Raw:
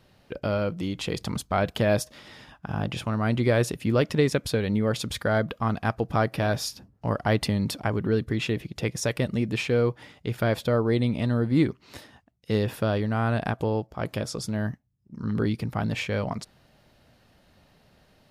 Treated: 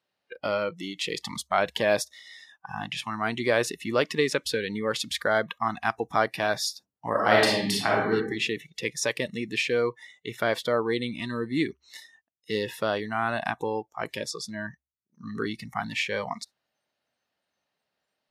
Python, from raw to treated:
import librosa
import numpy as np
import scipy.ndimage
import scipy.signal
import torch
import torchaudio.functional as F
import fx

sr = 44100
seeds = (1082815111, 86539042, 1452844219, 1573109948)

y = fx.reverb_throw(x, sr, start_s=7.1, length_s=1.02, rt60_s=0.88, drr_db=-4.0)
y = fx.high_shelf(y, sr, hz=8400.0, db=-8.5, at=(14.31, 14.71))
y = fx.weighting(y, sr, curve='A')
y = fx.noise_reduce_blind(y, sr, reduce_db=21)
y = fx.peak_eq(y, sr, hz=68.0, db=11.0, octaves=0.22)
y = y * librosa.db_to_amplitude(2.5)